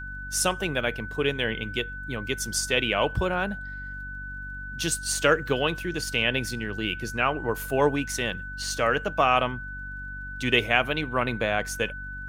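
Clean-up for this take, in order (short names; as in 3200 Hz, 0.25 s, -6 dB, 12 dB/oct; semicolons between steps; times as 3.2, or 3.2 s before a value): de-click; de-hum 47.9 Hz, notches 6; notch 1500 Hz, Q 30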